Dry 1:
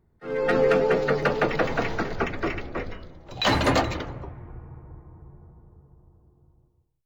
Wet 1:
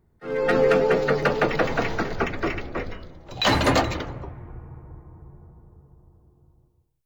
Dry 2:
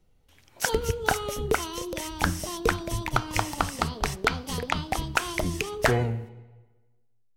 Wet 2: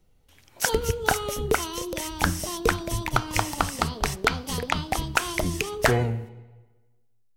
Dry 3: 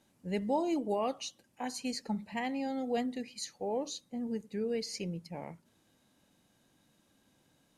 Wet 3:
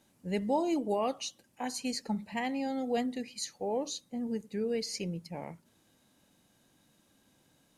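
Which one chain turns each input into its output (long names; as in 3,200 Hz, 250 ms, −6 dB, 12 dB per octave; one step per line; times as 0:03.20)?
high-shelf EQ 6,800 Hz +3.5 dB
level +1.5 dB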